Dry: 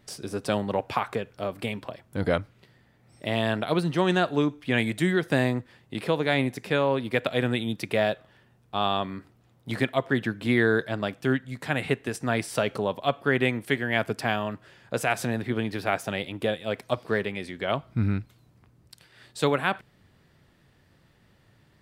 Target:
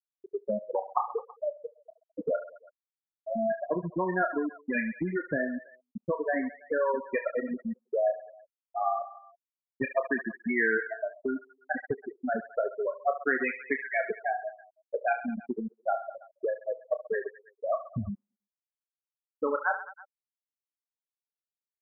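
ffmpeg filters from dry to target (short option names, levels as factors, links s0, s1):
-filter_complex "[0:a]highpass=f=300:p=1,afftfilt=real='re*gte(hypot(re,im),0.224)':imag='im*gte(hypot(re,im),0.224)':win_size=1024:overlap=0.75,lowshelf=f=430:g=11.5,acrossover=split=770|3100[s0][s1][s2];[s0]acompressor=threshold=0.0316:ratio=6[s3];[s1]aecho=1:1:30|72|130.8|213.1|328.4:0.631|0.398|0.251|0.158|0.1[s4];[s3][s4][s2]amix=inputs=3:normalize=0"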